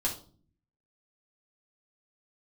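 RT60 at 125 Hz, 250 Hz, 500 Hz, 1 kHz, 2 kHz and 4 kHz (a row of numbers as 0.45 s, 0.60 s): 1.0 s, 0.80 s, 0.50 s, 0.40 s, 0.25 s, 0.35 s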